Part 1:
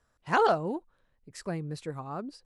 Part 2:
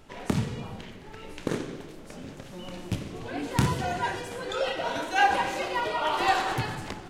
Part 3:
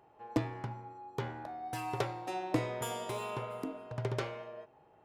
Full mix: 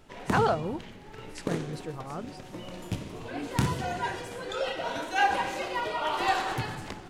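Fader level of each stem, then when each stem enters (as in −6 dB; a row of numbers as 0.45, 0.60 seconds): −1.5, −2.5, −12.5 decibels; 0.00, 0.00, 0.00 seconds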